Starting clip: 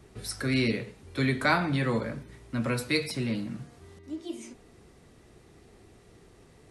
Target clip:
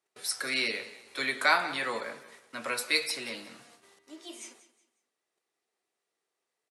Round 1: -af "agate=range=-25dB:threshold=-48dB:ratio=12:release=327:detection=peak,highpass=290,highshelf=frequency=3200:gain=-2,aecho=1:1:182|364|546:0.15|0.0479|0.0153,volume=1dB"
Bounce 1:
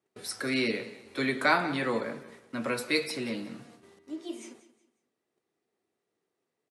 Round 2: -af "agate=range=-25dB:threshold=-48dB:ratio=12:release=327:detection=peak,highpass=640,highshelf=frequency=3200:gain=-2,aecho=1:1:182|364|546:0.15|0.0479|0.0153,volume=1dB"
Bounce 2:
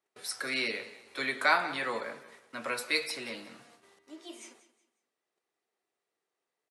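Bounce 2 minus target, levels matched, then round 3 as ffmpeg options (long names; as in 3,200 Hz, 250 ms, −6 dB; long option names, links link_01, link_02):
8,000 Hz band −3.5 dB
-af "agate=range=-25dB:threshold=-48dB:ratio=12:release=327:detection=peak,highpass=640,highshelf=frequency=3200:gain=4,aecho=1:1:182|364|546:0.15|0.0479|0.0153,volume=1dB"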